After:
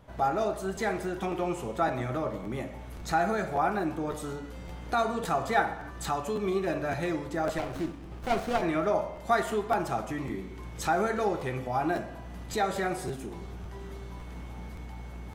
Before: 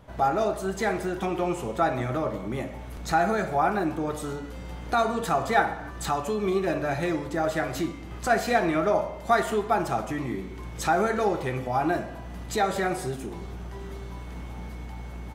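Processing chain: crackling interface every 0.56 s, samples 512, repeat, from 0.75 s; 7.58–8.62 s: sliding maximum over 17 samples; trim -3.5 dB

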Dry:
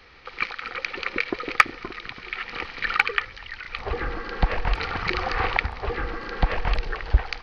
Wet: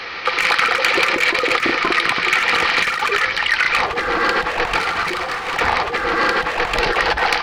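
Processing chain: overdrive pedal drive 29 dB, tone 1.5 kHz, clips at -2.5 dBFS; in parallel at -5 dB: hard clipper -13 dBFS, distortion -15 dB; on the sum: compressor with a negative ratio -15 dBFS, ratio -0.5; treble shelf 3.4 kHz +10.5 dB; feedback comb 170 Hz, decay 0.16 s, harmonics all, mix 50%

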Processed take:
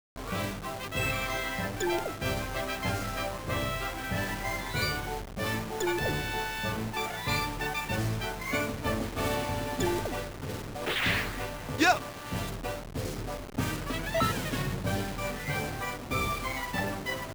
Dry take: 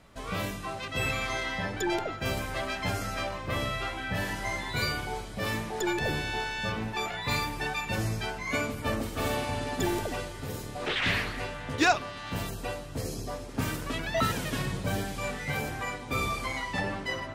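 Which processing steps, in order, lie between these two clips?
send-on-delta sampling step -35.5 dBFS

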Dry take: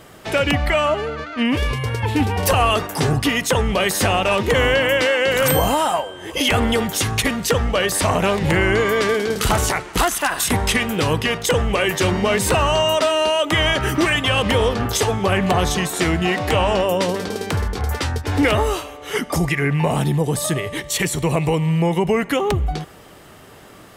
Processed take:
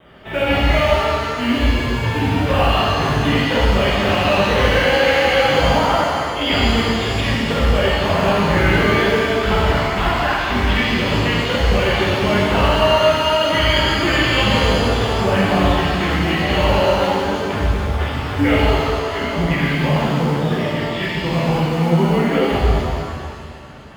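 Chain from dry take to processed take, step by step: steep low-pass 3.6 kHz 96 dB/octave; in parallel at -6.5 dB: short-mantissa float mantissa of 2-bit; on the sum: vibrato 1.6 Hz 20 cents; pitch-shifted reverb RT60 2.1 s, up +7 st, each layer -8 dB, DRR -8 dB; trim -10.5 dB

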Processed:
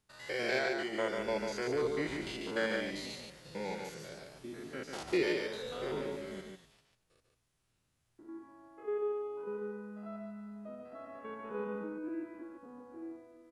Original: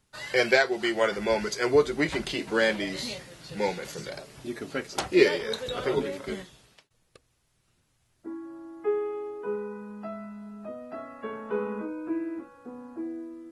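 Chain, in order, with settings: spectrogram pixelated in time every 100 ms; delay 144 ms -4.5 dB; trim -8 dB

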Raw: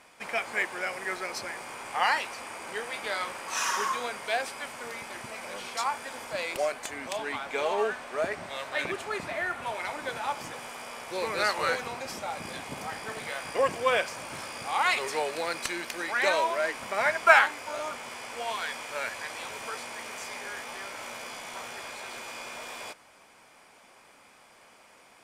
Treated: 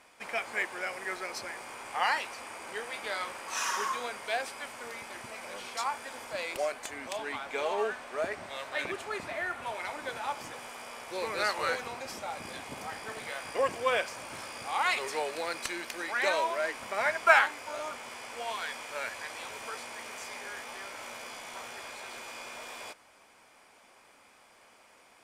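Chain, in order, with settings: peaking EQ 160 Hz -4.5 dB 0.57 oct; trim -3 dB

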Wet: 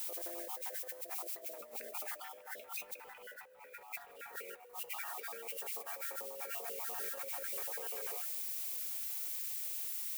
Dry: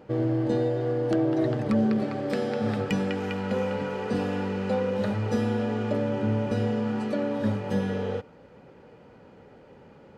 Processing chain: random holes in the spectrogram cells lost 53%; Doppler pass-by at 3.53 s, 19 m/s, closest 15 m; treble shelf 3.2 kHz -9 dB; added noise violet -50 dBFS; high-pass 570 Hz 24 dB/octave; in parallel at -6 dB: wavefolder -39 dBFS; on the sum: band-stop 810 Hz, Q 16; compressor with a negative ratio -46 dBFS, ratio -0.5; peaking EQ 2.3 kHz +6 dB 0.77 oct; on a send at -24 dB: reverberation RT60 2.3 s, pre-delay 105 ms; on the sum: trim +2.5 dB

